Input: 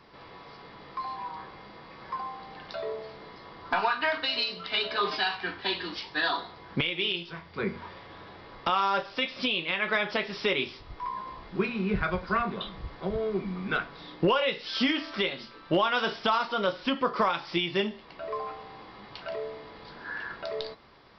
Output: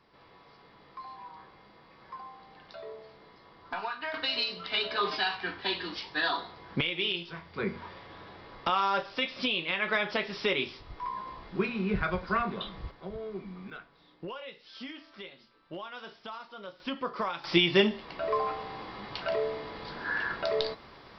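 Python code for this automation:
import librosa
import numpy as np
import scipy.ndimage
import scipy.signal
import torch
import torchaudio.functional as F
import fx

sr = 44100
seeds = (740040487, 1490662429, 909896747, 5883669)

y = fx.gain(x, sr, db=fx.steps((0.0, -9.0), (4.14, -1.5), (12.91, -9.0), (13.7, -16.5), (16.8, -7.0), (17.44, 5.0)))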